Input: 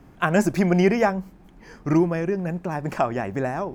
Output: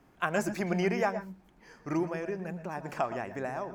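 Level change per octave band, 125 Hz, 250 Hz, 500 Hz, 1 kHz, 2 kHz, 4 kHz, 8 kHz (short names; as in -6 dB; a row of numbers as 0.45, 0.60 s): -12.5 dB, -11.5 dB, -9.0 dB, -8.0 dB, -7.0 dB, -7.0 dB, n/a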